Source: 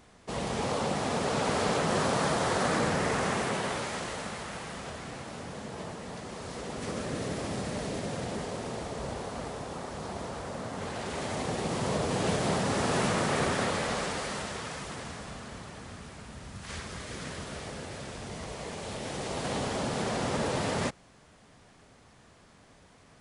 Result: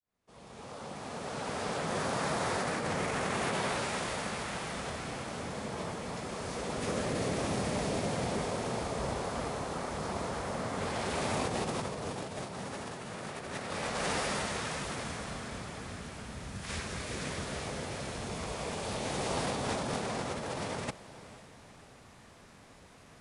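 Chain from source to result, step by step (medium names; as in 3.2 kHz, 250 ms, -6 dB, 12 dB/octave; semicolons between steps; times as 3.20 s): fade-in on the opening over 4.64 s; formant shift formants +2 st; compressor with a negative ratio -33 dBFS, ratio -0.5; on a send: echo that smears into a reverb 473 ms, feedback 43%, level -16 dB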